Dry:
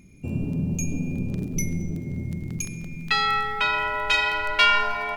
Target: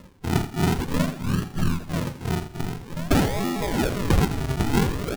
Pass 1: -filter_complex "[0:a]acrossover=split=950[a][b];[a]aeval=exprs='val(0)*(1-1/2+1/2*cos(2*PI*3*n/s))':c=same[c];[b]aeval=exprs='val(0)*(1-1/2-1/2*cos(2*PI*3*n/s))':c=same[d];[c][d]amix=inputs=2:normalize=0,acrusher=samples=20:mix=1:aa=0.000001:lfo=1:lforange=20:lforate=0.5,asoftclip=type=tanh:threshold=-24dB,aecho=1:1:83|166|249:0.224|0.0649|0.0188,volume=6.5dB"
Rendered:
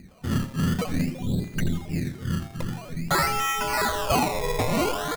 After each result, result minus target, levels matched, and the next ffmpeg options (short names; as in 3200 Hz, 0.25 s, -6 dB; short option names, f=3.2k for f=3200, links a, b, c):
soft clip: distortion +13 dB; decimation with a swept rate: distortion -4 dB
-filter_complex "[0:a]acrossover=split=950[a][b];[a]aeval=exprs='val(0)*(1-1/2+1/2*cos(2*PI*3*n/s))':c=same[c];[b]aeval=exprs='val(0)*(1-1/2-1/2*cos(2*PI*3*n/s))':c=same[d];[c][d]amix=inputs=2:normalize=0,acrusher=samples=20:mix=1:aa=0.000001:lfo=1:lforange=20:lforate=0.5,asoftclip=type=tanh:threshold=-14.5dB,aecho=1:1:83|166|249:0.224|0.0649|0.0188,volume=6.5dB"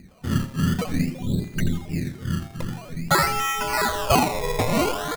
decimation with a swept rate: distortion -4 dB
-filter_complex "[0:a]acrossover=split=950[a][b];[a]aeval=exprs='val(0)*(1-1/2+1/2*cos(2*PI*3*n/s))':c=same[c];[b]aeval=exprs='val(0)*(1-1/2-1/2*cos(2*PI*3*n/s))':c=same[d];[c][d]amix=inputs=2:normalize=0,acrusher=samples=56:mix=1:aa=0.000001:lfo=1:lforange=56:lforate=0.5,asoftclip=type=tanh:threshold=-14.5dB,aecho=1:1:83|166|249:0.224|0.0649|0.0188,volume=6.5dB"